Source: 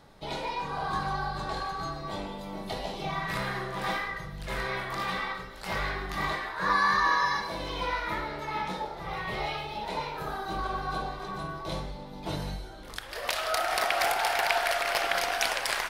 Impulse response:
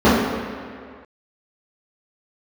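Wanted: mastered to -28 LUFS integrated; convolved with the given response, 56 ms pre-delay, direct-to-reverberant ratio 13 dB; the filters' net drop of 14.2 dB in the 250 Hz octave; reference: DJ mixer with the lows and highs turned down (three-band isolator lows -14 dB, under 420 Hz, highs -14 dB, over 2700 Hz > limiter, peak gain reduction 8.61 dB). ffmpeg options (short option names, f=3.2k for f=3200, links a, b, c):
-filter_complex "[0:a]equalizer=f=250:t=o:g=-7,asplit=2[a][b];[1:a]atrim=start_sample=2205,adelay=56[c];[b][c]afir=irnorm=-1:irlink=0,volume=-41dB[d];[a][d]amix=inputs=2:normalize=0,acrossover=split=420 2700:gain=0.2 1 0.2[e][f][g];[e][f][g]amix=inputs=3:normalize=0,volume=6dB,alimiter=limit=-15.5dB:level=0:latency=1"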